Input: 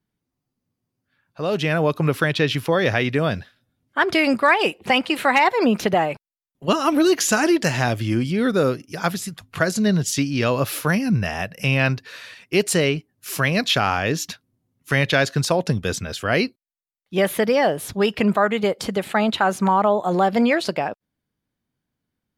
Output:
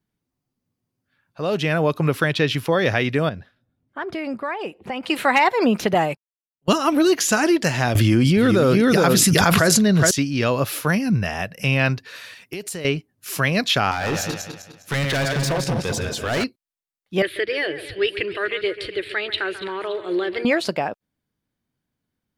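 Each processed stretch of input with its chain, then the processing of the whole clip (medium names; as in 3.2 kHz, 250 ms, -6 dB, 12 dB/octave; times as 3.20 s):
3.29–5.03 s: treble shelf 2.1 kHz -12 dB + compression 1.5:1, threshold -38 dBFS
5.95–6.78 s: gate -30 dBFS, range -34 dB + tone controls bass +4 dB, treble +7 dB
7.95–10.11 s: delay 417 ms -6 dB + level flattener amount 100%
12.15–12.85 s: high-pass 44 Hz + treble shelf 12 kHz +11.5 dB + compression 8:1, threshold -27 dBFS
13.91–16.44 s: backward echo that repeats 102 ms, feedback 59%, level -5 dB + hard clipper -19 dBFS
17.22–20.45 s: FFT filter 110 Hz 0 dB, 230 Hz -29 dB, 330 Hz +5 dB, 780 Hz -20 dB, 1.2 kHz -11 dB, 1.7 kHz +2 dB, 4.3 kHz +2 dB, 6.3 kHz -22 dB, 9.5 kHz -8 dB, 14 kHz -28 dB + two-band feedback delay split 2.3 kHz, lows 138 ms, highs 285 ms, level -13 dB
whole clip: none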